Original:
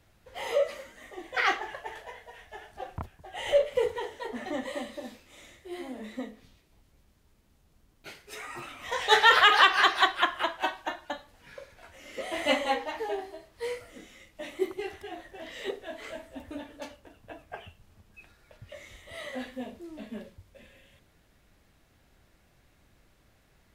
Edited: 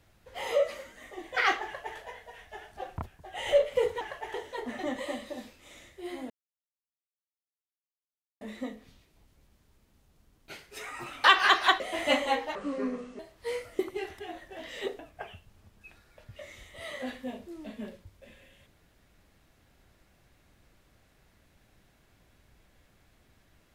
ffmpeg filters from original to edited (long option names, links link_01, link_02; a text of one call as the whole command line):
ffmpeg -i in.wav -filter_complex "[0:a]asplit=10[link_01][link_02][link_03][link_04][link_05][link_06][link_07][link_08][link_09][link_10];[link_01]atrim=end=4.012[link_11];[link_02]atrim=start=1.638:end=1.972[link_12];[link_03]atrim=start=4.008:end=5.97,asetpts=PTS-STARTPTS,afade=type=out:start_time=1.958:duration=0.004:curve=hsin,apad=pad_dur=2.11[link_13];[link_04]atrim=start=5.97:end=8.802,asetpts=PTS-STARTPTS,afade=type=in:duration=0.004:curve=hsin[link_14];[link_05]atrim=start=9.578:end=10.142[link_15];[link_06]atrim=start=12.188:end=12.944[link_16];[link_07]atrim=start=12.94:end=13.35,asetpts=PTS-STARTPTS,asetrate=28224,aresample=44100[link_17];[link_08]atrim=start=13.346:end=13.952[link_18];[link_09]atrim=start=14.618:end=15.822[link_19];[link_10]atrim=start=17.318[link_20];[link_11][link_12]acrossfade=duration=0.004:curve1=hsin:curve2=hsin[link_21];[link_13][link_14]concat=n=2:v=0:a=1[link_22];[link_21][link_22]acrossfade=duration=0.004:curve1=hsin:curve2=hsin[link_23];[link_23][link_15]acrossfade=duration=0.004:curve1=hsin:curve2=hsin[link_24];[link_24][link_16]acrossfade=duration=0.004:curve1=hsin:curve2=hsin[link_25];[link_25][link_17]acrossfade=duration=0.004:curve1=hsin:curve2=hsin[link_26];[link_26][link_18]acrossfade=duration=0.004:curve1=hsin:curve2=hsin[link_27];[link_27][link_19]acrossfade=duration=0.004:curve1=hsin:curve2=hsin[link_28];[link_28][link_20]acrossfade=duration=0.004:curve1=hsin:curve2=hsin" out.wav